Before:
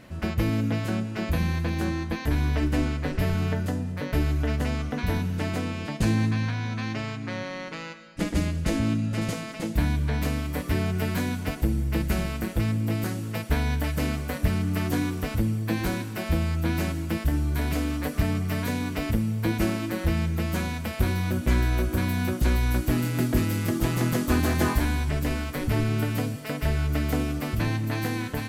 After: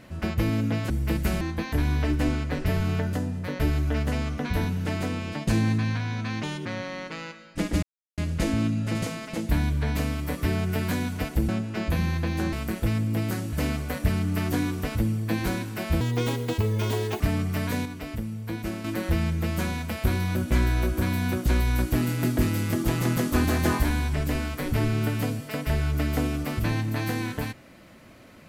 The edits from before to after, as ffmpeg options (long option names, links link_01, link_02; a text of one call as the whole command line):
ffmpeg -i in.wav -filter_complex "[0:a]asplit=13[link_01][link_02][link_03][link_04][link_05][link_06][link_07][link_08][link_09][link_10][link_11][link_12][link_13];[link_01]atrim=end=0.902[link_14];[link_02]atrim=start=11.748:end=12.262[link_15];[link_03]atrim=start=1.938:end=6.964[link_16];[link_04]atrim=start=6.96:end=7.27,asetpts=PTS-STARTPTS,asetrate=60417,aresample=44100[link_17];[link_05]atrim=start=7.266:end=8.44,asetpts=PTS-STARTPTS,afade=type=out:start_time=1.17:duration=0.004:curve=hsin,apad=pad_dur=0.35[link_18];[link_06]atrim=start=8.44:end=11.752,asetpts=PTS-STARTPTS,afade=type=in:duration=0.004:curve=hsin[link_19];[link_07]atrim=start=0.898:end=1.942[link_20];[link_08]atrim=start=12.258:end=13.262[link_21];[link_09]atrim=start=13.918:end=16.404[link_22];[link_10]atrim=start=16.4:end=18.16,asetpts=PTS-STARTPTS,asetrate=64827,aresample=44100[link_23];[link_11]atrim=start=18.156:end=18.812[link_24];[link_12]atrim=start=18.808:end=19.802,asetpts=PTS-STARTPTS,volume=-7dB[link_25];[link_13]atrim=start=19.798[link_26];[link_14][link_15]acrossfade=duration=0.004:curve1=hsin:curve2=hsin[link_27];[link_27][link_16]acrossfade=duration=0.004:curve1=hsin:curve2=hsin[link_28];[link_28][link_17]acrossfade=duration=0.004:curve1=hsin:curve2=hsin[link_29];[link_18][link_19]concat=n=2:v=0:a=1[link_30];[link_29][link_30]acrossfade=duration=0.004:curve1=hsin:curve2=hsin[link_31];[link_31][link_20]acrossfade=duration=0.004:curve1=hsin:curve2=hsin[link_32];[link_32][link_21]acrossfade=duration=0.004:curve1=hsin:curve2=hsin[link_33];[link_33][link_22]acrossfade=duration=0.004:curve1=hsin:curve2=hsin[link_34];[link_34][link_23]acrossfade=duration=0.004:curve1=hsin:curve2=hsin[link_35];[link_35][link_24]acrossfade=duration=0.004:curve1=hsin:curve2=hsin[link_36];[link_36][link_25]acrossfade=duration=0.004:curve1=hsin:curve2=hsin[link_37];[link_37][link_26]acrossfade=duration=0.004:curve1=hsin:curve2=hsin" out.wav